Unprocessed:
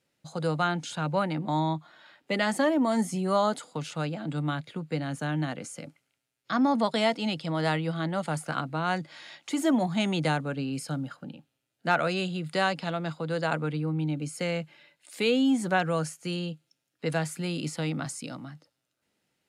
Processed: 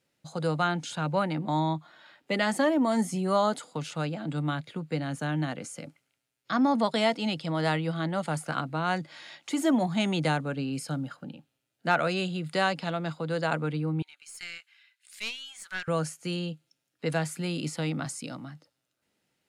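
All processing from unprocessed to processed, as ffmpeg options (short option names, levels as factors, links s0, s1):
-filter_complex "[0:a]asettb=1/sr,asplit=3[s0][s1][s2];[s0]atrim=end=14.024[s3];[s1]atrim=start=14.02:end=15.88,asetpts=PTS-STARTPTS,afade=t=in:d=0.004:c=qsin,afade=t=out:st=1.856:d=0.004:c=qsin,highpass=f=1400:w=0.5412,highpass=f=1400:w=1.3066,aeval=exprs='(tanh(12.6*val(0)+0.65)-tanh(0.65))/12.6':c=same[s4];[s2]atrim=start=15.876[s5];[s3][s4]acrossfade=d=0.004:c1=hsin:c2=qsin[s6];[s6][s5]acrossfade=d=0.004:c1=qsin:c2=hsin"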